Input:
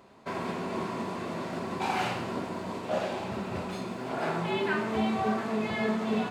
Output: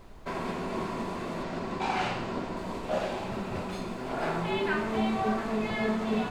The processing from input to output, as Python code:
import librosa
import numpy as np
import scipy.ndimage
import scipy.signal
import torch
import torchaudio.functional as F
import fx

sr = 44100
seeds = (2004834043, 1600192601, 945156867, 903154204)

y = fx.lowpass(x, sr, hz=7200.0, slope=12, at=(1.43, 2.57))
y = fx.dmg_noise_colour(y, sr, seeds[0], colour='brown', level_db=-47.0)